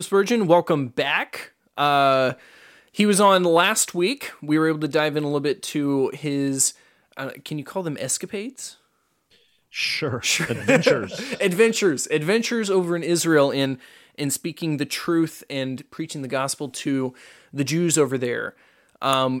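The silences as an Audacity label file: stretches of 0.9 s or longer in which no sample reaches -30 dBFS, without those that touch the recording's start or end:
8.690000	9.740000	silence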